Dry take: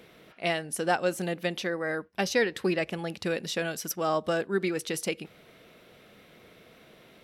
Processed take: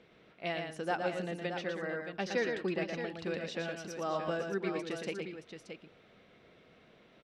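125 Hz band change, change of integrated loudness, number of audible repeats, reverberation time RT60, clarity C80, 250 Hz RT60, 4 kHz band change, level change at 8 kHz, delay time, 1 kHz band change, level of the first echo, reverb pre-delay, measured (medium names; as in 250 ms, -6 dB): -6.0 dB, -6.5 dB, 3, no reverb, no reverb, no reverb, -8.5 dB, -15.5 dB, 116 ms, -6.5 dB, -5.0 dB, no reverb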